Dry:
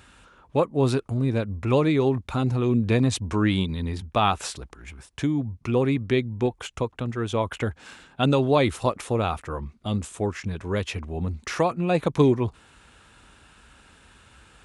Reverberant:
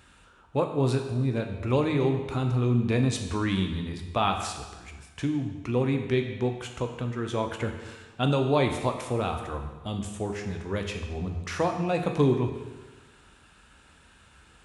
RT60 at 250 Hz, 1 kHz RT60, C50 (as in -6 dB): 1.3 s, 1.3 s, 6.5 dB